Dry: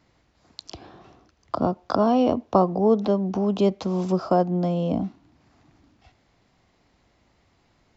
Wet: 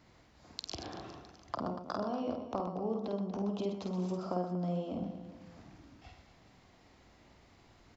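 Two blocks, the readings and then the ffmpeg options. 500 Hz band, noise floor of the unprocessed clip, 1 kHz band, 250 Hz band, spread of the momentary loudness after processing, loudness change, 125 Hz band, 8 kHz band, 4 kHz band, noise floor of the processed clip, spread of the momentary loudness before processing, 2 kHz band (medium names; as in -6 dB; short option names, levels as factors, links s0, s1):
-15.0 dB, -65 dBFS, -14.0 dB, -13.5 dB, 19 LU, -14.5 dB, -12.0 dB, no reading, -6.5 dB, -63 dBFS, 9 LU, -9.0 dB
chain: -af "acompressor=threshold=0.0141:ratio=5,aecho=1:1:50|125|237.5|406.2|659.4:0.631|0.398|0.251|0.158|0.1"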